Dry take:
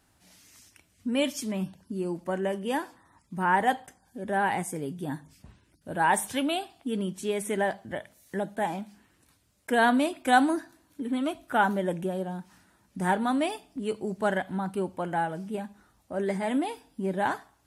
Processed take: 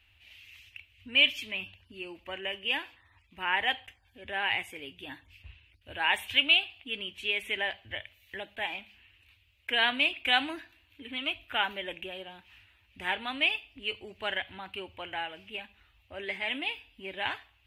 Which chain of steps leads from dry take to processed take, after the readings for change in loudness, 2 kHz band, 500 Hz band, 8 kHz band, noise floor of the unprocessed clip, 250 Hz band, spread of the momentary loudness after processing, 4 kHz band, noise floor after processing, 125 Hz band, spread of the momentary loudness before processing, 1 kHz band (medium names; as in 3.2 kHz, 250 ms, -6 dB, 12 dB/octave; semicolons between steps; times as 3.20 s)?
-1.0 dB, +2.5 dB, -11.0 dB, -15.5 dB, -67 dBFS, -15.5 dB, 20 LU, +11.0 dB, -66 dBFS, -17.5 dB, 14 LU, -9.0 dB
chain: FFT filter 100 Hz 0 dB, 150 Hz -30 dB, 290 Hz -17 dB, 510 Hz -15 dB, 880 Hz -13 dB, 1.5 kHz -9 dB, 2.7 kHz +13 dB, 5.3 kHz -15 dB, 9.7 kHz -22 dB, 14 kHz -9 dB; trim +4 dB